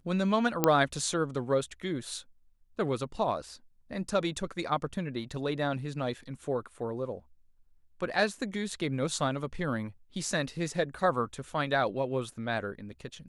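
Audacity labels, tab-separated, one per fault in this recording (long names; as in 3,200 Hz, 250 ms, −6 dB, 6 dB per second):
0.640000	0.640000	click −8 dBFS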